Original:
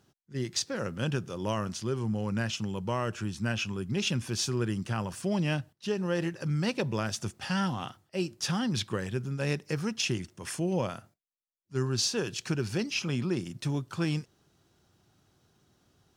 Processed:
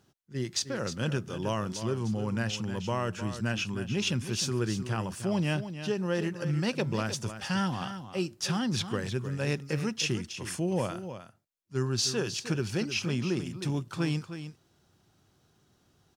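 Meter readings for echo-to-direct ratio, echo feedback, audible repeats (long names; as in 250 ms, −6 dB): −10.5 dB, repeats not evenly spaced, 1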